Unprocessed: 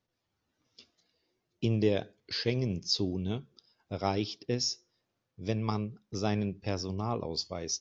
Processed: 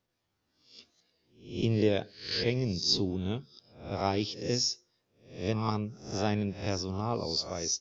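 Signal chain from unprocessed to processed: reverse spectral sustain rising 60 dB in 0.48 s

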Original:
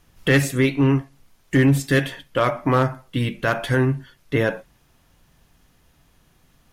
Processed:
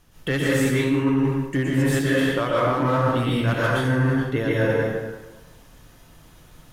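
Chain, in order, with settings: plate-style reverb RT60 1.2 s, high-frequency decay 0.75×, pre-delay 105 ms, DRR -9 dB; reverse; compression 6:1, threshold -18 dBFS, peak gain reduction 14.5 dB; reverse; peaking EQ 2.2 kHz -2.5 dB 0.44 oct

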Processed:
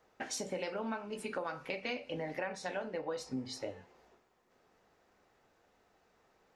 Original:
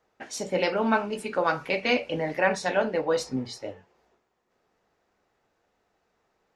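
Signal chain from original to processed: compression 6:1, threshold -39 dBFS, peak gain reduction 20.5 dB; feedback comb 260 Hz, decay 0.77 s, mix 50%; trim +8 dB

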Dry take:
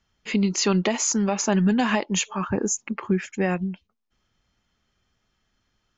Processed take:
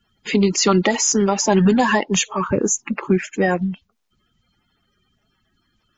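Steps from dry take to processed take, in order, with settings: coarse spectral quantiser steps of 30 dB; trim +6 dB

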